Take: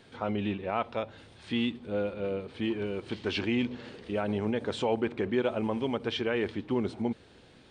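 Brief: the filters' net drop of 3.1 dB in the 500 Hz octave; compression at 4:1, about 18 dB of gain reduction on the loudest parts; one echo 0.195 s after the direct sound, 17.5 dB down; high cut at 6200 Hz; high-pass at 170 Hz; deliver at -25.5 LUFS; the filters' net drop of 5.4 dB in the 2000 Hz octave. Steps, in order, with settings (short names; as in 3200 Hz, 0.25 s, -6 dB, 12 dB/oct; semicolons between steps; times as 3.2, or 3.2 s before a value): HPF 170 Hz; LPF 6200 Hz; bell 500 Hz -3.5 dB; bell 2000 Hz -7 dB; compressor 4:1, threshold -49 dBFS; echo 0.195 s -17.5 dB; gain +24.5 dB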